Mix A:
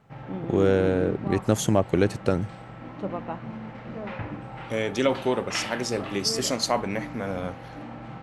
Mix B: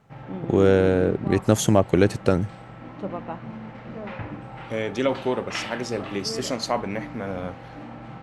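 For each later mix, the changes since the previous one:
first voice +3.5 dB
second voice: add high-shelf EQ 5,200 Hz −8.5 dB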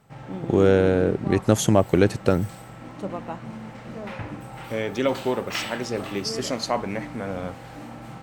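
background: remove low-pass filter 3,300 Hz 12 dB per octave

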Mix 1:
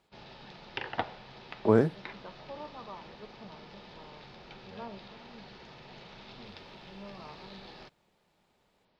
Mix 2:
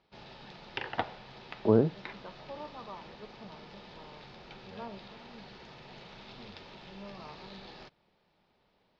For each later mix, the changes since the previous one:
speech: add Gaussian smoothing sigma 7.4 samples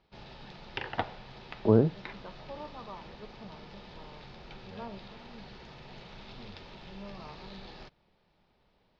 master: add low-shelf EQ 90 Hz +11 dB

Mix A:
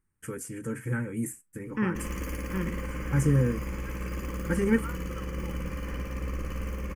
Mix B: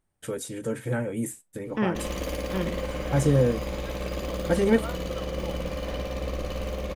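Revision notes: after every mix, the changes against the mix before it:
master: remove phaser with its sweep stopped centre 1,600 Hz, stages 4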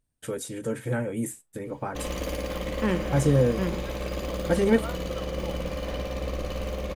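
second voice: entry +1.05 s

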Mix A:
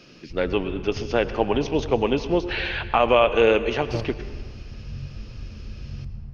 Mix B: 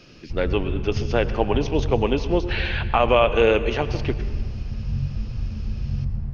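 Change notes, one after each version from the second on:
second voice −7.5 dB
background +9.0 dB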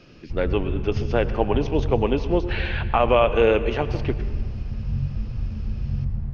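first voice: add high-shelf EQ 3,800 Hz −10 dB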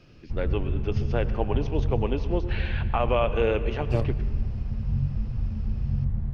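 first voice −6.5 dB
second voice +10.0 dB
background: send off

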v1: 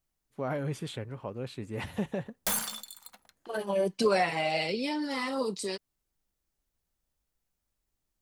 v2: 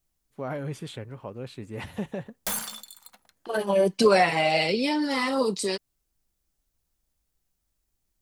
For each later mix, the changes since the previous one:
second voice +6.5 dB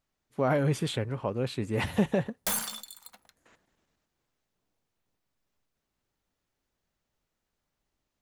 first voice +7.0 dB
second voice: muted

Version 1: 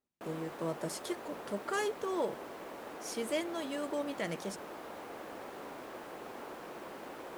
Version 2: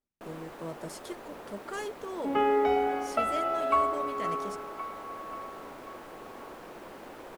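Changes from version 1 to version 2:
speech −3.5 dB
second sound: unmuted
master: remove high-pass filter 120 Hz 6 dB per octave

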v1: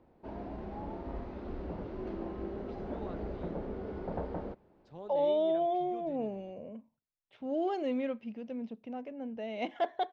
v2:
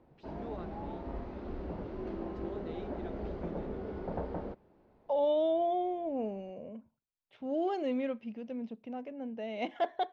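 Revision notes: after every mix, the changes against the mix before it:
first voice: entry −2.50 s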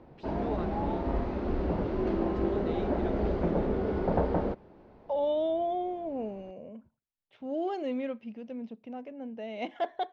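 first voice +7.0 dB
background +10.0 dB

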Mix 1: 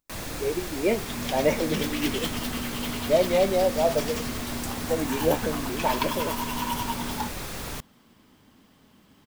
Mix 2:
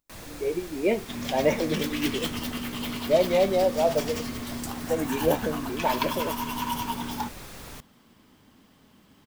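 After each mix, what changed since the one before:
first sound −7.5 dB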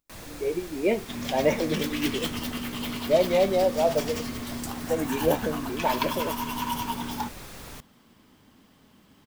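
nothing changed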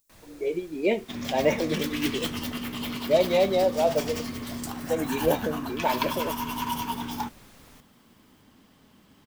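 speech: add bass and treble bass −1 dB, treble +15 dB
first sound −11.0 dB

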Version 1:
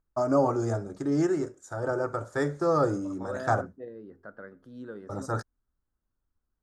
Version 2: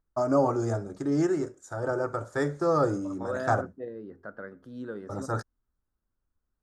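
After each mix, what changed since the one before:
second voice +3.5 dB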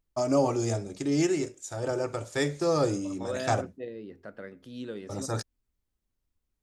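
master: add high shelf with overshoot 1,900 Hz +9 dB, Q 3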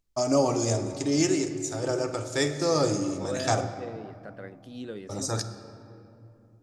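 first voice: add parametric band 5,800 Hz +7 dB 1.2 octaves
reverb: on, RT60 2.8 s

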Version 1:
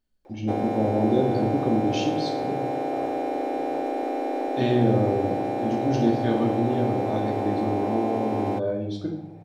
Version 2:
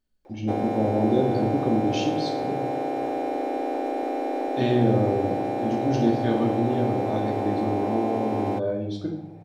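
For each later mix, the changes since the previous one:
second voice −10.5 dB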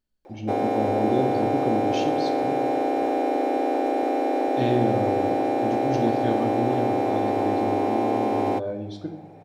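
first voice: send −6.0 dB
background +4.0 dB

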